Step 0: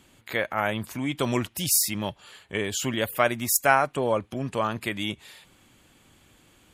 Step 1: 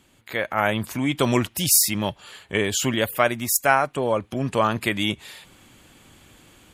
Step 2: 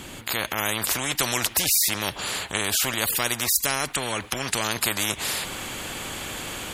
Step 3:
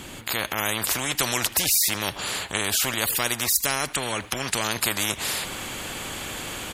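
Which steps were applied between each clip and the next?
automatic gain control gain up to 8 dB; level −1.5 dB
every bin compressed towards the loudest bin 4 to 1; level −3 dB
single-tap delay 79 ms −22.5 dB

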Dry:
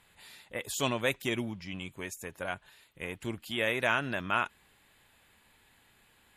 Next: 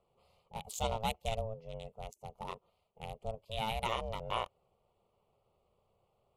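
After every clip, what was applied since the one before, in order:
adaptive Wiener filter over 25 samples
ring modulation 330 Hz
phaser with its sweep stopped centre 690 Hz, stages 4
level +2 dB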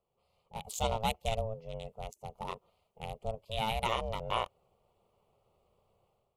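automatic gain control gain up to 11 dB
level −8 dB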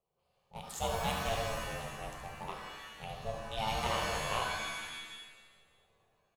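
single-tap delay 73 ms −8 dB
reverb with rising layers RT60 1.3 s, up +7 semitones, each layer −2 dB, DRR 2.5 dB
level −4.5 dB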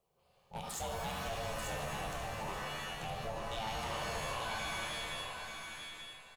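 downward compressor 3 to 1, threshold −42 dBFS, peak gain reduction 10 dB
soft clipping −39 dBFS, distortion −14 dB
repeating echo 887 ms, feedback 16%, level −5.5 dB
level +6 dB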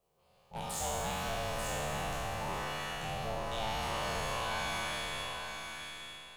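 peak hold with a decay on every bin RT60 1.93 s

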